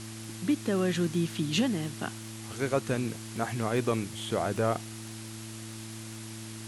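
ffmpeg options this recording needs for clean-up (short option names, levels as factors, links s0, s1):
-af "adeclick=t=4,bandreject=f=110.8:t=h:w=4,bandreject=f=221.6:t=h:w=4,bandreject=f=332.4:t=h:w=4,afftdn=nr=30:nf=-42"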